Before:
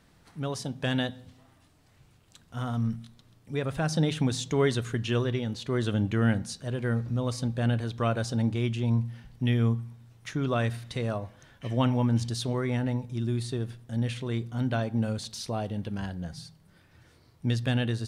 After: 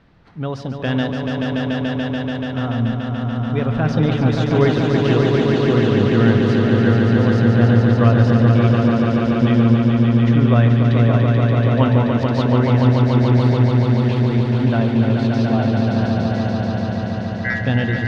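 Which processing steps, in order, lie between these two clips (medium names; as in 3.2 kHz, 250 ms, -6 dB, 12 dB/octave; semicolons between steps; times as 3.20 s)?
16.32–17.61 s: ring modulator 1.8 kHz; distance through air 250 m; echo with a slow build-up 144 ms, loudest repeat 5, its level -5 dB; trim +8 dB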